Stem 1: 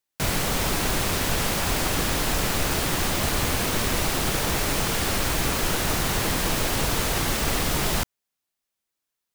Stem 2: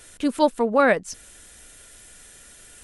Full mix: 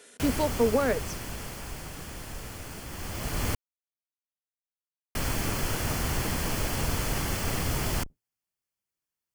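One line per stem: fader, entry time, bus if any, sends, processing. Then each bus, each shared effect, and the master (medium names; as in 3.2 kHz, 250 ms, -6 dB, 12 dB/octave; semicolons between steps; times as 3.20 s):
-6.5 dB, 0.00 s, muted 3.55–5.15 s, no send, octave divider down 1 oct, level +3 dB; band-stop 3.8 kHz, Q 5.9; auto duck -11 dB, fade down 1.85 s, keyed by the second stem
-5.5 dB, 0.00 s, no send, frequency weighting A; compression 2.5:1, threshold -26 dBFS, peak gain reduction 8.5 dB; small resonant body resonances 240/420 Hz, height 17 dB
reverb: none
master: none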